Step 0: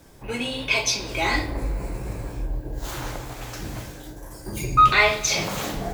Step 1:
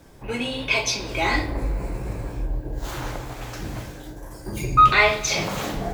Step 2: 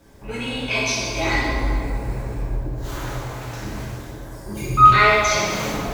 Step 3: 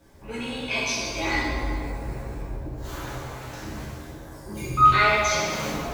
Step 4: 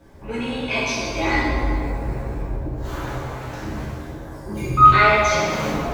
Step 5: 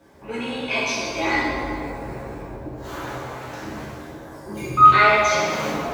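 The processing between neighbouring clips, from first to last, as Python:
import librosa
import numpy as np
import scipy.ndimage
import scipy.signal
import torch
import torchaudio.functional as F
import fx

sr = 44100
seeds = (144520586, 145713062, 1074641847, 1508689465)

y1 = fx.high_shelf(x, sr, hz=4400.0, db=-5.5)
y1 = y1 * 10.0 ** (1.5 / 20.0)
y2 = fx.rev_plate(y1, sr, seeds[0], rt60_s=2.1, hf_ratio=0.7, predelay_ms=0, drr_db=-5.0)
y2 = y2 * 10.0 ** (-4.5 / 20.0)
y3 = fx.doubler(y2, sr, ms=13.0, db=-6.0)
y3 = y3 * 10.0 ** (-5.0 / 20.0)
y4 = fx.high_shelf(y3, sr, hz=3100.0, db=-9.5)
y4 = y4 * 10.0 ** (6.5 / 20.0)
y5 = fx.highpass(y4, sr, hz=250.0, slope=6)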